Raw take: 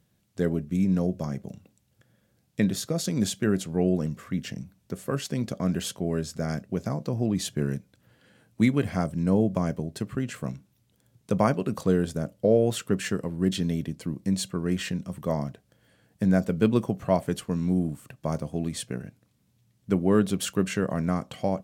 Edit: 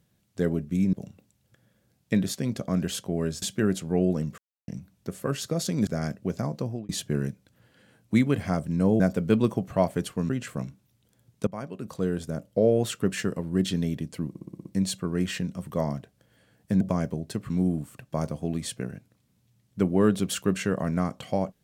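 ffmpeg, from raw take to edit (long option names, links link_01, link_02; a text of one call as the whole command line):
ffmpeg -i in.wav -filter_complex "[0:a]asplit=20[link_01][link_02][link_03][link_04][link_05][link_06][link_07][link_08][link_09][link_10][link_11][link_12][link_13][link_14][link_15][link_16][link_17][link_18][link_19][link_20];[link_01]atrim=end=0.932[link_21];[link_02]atrim=start=1.398:end=2.812[link_22];[link_03]atrim=start=5.258:end=6.342[link_23];[link_04]atrim=start=3.258:end=4.22,asetpts=PTS-STARTPTS,afade=type=out:start_time=0.958:duration=0.004:curve=hsin[link_24];[link_05]atrim=start=4.22:end=4.52,asetpts=PTS-STARTPTS,volume=0[link_25];[link_06]atrim=start=4.52:end=5.262,asetpts=PTS-STARTPTS,afade=type=in:duration=0.004:curve=hsin[link_26];[link_07]atrim=start=2.808:end=3.262[link_27];[link_08]atrim=start=6.338:end=7.36,asetpts=PTS-STARTPTS,afade=type=out:start_time=0.722:duration=0.3[link_28];[link_09]atrim=start=7.36:end=9.472,asetpts=PTS-STARTPTS,afade=type=in:duration=0.004:curve=hsin[link_29];[link_10]atrim=start=16.318:end=17.612[link_30];[link_11]atrim=start=10.158:end=11.34,asetpts=PTS-STARTPTS,afade=type=out:start_time=1.178:duration=0.004:curve=hsin:silence=0.1[link_31];[link_12]atrim=start=11.34:end=14.222,asetpts=PTS-STARTPTS,afade=type=in:duration=1.62:curve=qsin:silence=0.1[link_32];[link_13]atrim=start=14.158:end=14.222[link_33];[link_14]atrim=start=14.158:end=14.222[link_34];[link_15]atrim=start=14.158:end=14.222[link_35];[link_16]atrim=start=14.158:end=14.222[link_36];[link_17]atrim=start=14.158:end=14.222[link_37];[link_18]atrim=start=14.158:end=16.322[link_38];[link_19]atrim=start=9.468:end=10.162[link_39];[link_20]atrim=start=17.608[link_40];[link_21][link_22]acrossfade=duration=0.004:curve1=hsin:curve2=hsin[link_41];[link_41][link_23]acrossfade=duration=0.004:curve1=hsin:curve2=hsin[link_42];[link_24][link_25][link_26]concat=n=3:v=0:a=1[link_43];[link_42][link_43]acrossfade=duration=0.004:curve1=hsin:curve2=hsin[link_44];[link_44][link_27]acrossfade=duration=0.004:curve1=hsin:curve2=hsin[link_45];[link_28][link_29]concat=n=2:v=0:a=1[link_46];[link_45][link_46]acrossfade=duration=0.004:curve1=hsin:curve2=hsin[link_47];[link_47][link_30]acrossfade=duration=0.004:curve1=hsin:curve2=hsin[link_48];[link_31][link_32]concat=n=2:v=0:a=1[link_49];[link_48][link_49]acrossfade=duration=0.004:curve1=hsin:curve2=hsin[link_50];[link_50][link_33]acrossfade=duration=0.004:curve1=hsin:curve2=hsin[link_51];[link_51][link_34]acrossfade=duration=0.004:curve1=hsin:curve2=hsin[link_52];[link_52][link_35]acrossfade=duration=0.004:curve1=hsin:curve2=hsin[link_53];[link_53][link_36]acrossfade=duration=0.004:curve1=hsin:curve2=hsin[link_54];[link_54][link_37]acrossfade=duration=0.004:curve1=hsin:curve2=hsin[link_55];[link_55][link_38]acrossfade=duration=0.004:curve1=hsin:curve2=hsin[link_56];[link_56][link_39]acrossfade=duration=0.004:curve1=hsin:curve2=hsin[link_57];[link_57][link_40]acrossfade=duration=0.004:curve1=hsin:curve2=hsin" out.wav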